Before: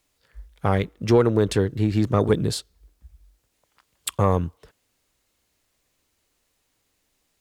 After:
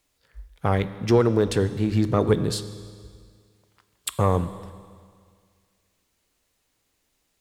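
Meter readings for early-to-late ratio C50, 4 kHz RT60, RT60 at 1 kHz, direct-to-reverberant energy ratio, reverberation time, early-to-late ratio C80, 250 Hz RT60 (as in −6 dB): 13.5 dB, 2.0 s, 2.0 s, 12.0 dB, 2.0 s, 14.0 dB, 2.0 s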